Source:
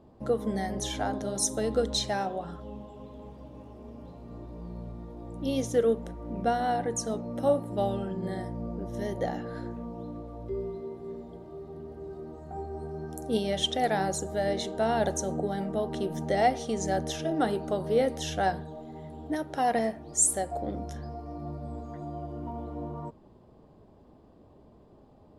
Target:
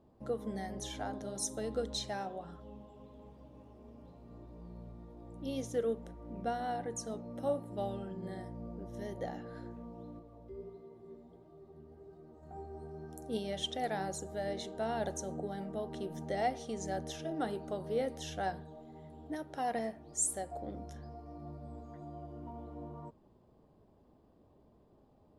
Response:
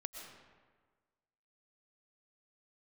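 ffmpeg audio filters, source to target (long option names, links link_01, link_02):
-filter_complex "[0:a]asettb=1/sr,asplit=3[link_01][link_02][link_03];[link_01]atrim=end=10.194[link_04];[link_02]atrim=start=10.19:end=12.43,asetpts=PTS-STARTPTS,afade=type=in:duration=0.004:curve=qsin,afade=type=out:start_time=2.236:duration=0.004:curve=qsin,flanger=delay=5.8:depth=7.8:regen=50:speed=1.5:shape=sinusoidal[link_05];[link_03]atrim=start=12.426[link_06];[link_04][link_05]acrossfade=duration=0.004:curve1=hsin:curve2=qsin[link_07];[link_07][link_06]acrossfade=duration=0.004:curve1=qsin:curve2=hsin,volume=-9dB"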